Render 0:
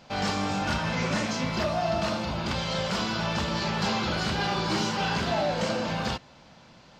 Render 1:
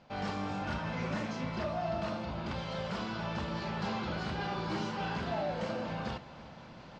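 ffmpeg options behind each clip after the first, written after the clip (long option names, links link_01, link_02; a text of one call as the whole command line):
ffmpeg -i in.wav -filter_complex "[0:a]aemphasis=mode=reproduction:type=75fm,areverse,acompressor=mode=upward:threshold=-31dB:ratio=2.5,areverse,asplit=2[link_01][link_02];[link_02]adelay=332.4,volume=-17dB,highshelf=frequency=4000:gain=-7.48[link_03];[link_01][link_03]amix=inputs=2:normalize=0,volume=-8dB" out.wav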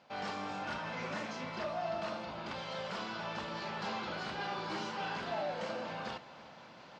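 ffmpeg -i in.wav -af "highpass=frequency=480:poles=1" out.wav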